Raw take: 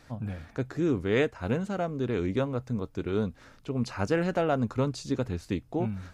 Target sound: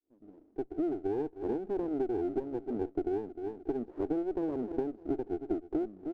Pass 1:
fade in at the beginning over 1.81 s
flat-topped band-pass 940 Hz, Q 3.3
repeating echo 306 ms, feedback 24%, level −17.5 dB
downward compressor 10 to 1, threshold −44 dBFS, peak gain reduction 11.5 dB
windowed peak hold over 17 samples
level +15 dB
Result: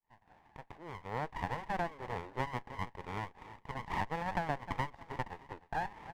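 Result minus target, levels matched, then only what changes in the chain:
1,000 Hz band +13.0 dB
change: flat-topped band-pass 350 Hz, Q 3.3

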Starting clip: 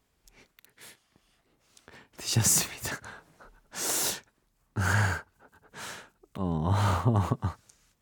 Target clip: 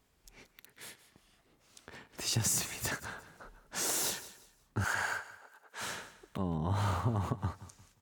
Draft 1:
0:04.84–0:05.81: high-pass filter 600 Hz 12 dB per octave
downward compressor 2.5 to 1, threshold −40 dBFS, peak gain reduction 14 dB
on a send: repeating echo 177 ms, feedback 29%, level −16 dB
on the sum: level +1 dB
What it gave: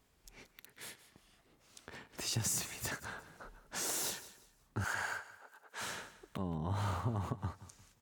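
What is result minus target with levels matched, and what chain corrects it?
downward compressor: peak gain reduction +4 dB
0:04.84–0:05.81: high-pass filter 600 Hz 12 dB per octave
downward compressor 2.5 to 1, threshold −33 dBFS, peak gain reduction 10 dB
on a send: repeating echo 177 ms, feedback 29%, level −16 dB
on the sum: level +1 dB

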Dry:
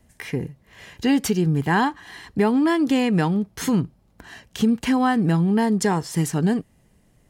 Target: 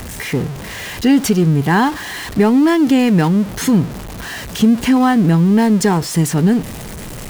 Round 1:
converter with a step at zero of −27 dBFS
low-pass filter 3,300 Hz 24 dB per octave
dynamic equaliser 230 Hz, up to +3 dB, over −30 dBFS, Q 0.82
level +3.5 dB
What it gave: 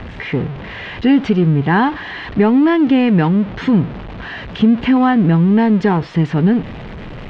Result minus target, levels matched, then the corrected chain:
4,000 Hz band −4.0 dB
converter with a step at zero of −27 dBFS
dynamic equaliser 230 Hz, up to +3 dB, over −30 dBFS, Q 0.82
level +3.5 dB

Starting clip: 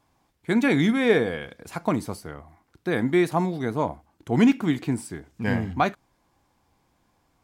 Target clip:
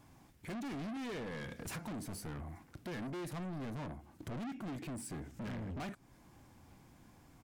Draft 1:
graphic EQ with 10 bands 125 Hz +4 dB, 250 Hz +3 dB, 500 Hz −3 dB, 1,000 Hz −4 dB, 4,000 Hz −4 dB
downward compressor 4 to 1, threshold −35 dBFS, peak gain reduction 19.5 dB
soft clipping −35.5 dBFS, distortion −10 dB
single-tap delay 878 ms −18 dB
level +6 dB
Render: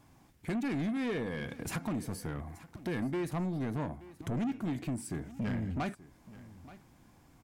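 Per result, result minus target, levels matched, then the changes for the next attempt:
echo-to-direct +10 dB; soft clipping: distortion −6 dB
change: single-tap delay 878 ms −28 dB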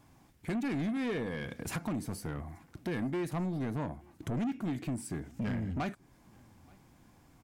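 soft clipping: distortion −6 dB
change: soft clipping −46 dBFS, distortion −4 dB

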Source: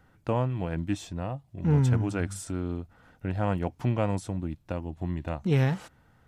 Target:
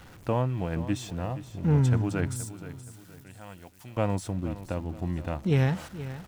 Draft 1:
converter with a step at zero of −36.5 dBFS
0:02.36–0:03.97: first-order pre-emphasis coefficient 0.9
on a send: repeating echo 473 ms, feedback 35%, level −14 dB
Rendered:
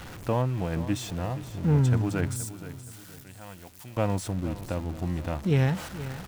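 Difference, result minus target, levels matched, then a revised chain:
converter with a step at zero: distortion +8 dB
converter with a step at zero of −45.5 dBFS
0:02.36–0:03.97: first-order pre-emphasis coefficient 0.9
on a send: repeating echo 473 ms, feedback 35%, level −14 dB

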